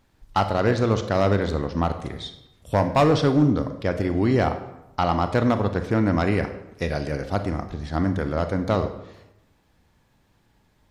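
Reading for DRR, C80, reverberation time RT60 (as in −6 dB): 8.0 dB, 12.0 dB, 0.90 s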